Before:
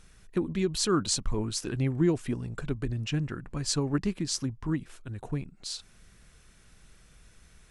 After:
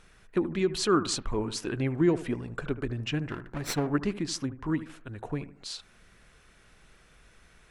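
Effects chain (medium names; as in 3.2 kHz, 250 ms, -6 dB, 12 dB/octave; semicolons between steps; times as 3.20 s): 3.30–3.87 s: comb filter that takes the minimum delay 0.53 ms; tone controls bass -8 dB, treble -9 dB; bucket-brigade echo 76 ms, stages 1024, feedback 36%, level -14 dB; trim +4 dB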